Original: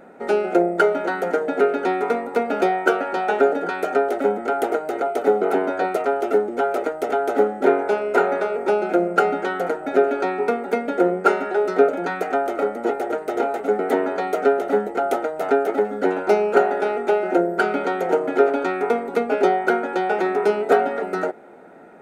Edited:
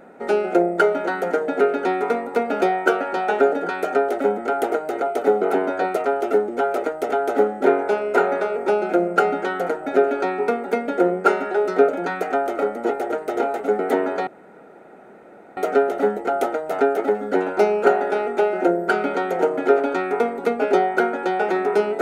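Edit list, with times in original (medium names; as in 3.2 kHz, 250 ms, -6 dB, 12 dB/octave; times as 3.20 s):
14.27 s: insert room tone 1.30 s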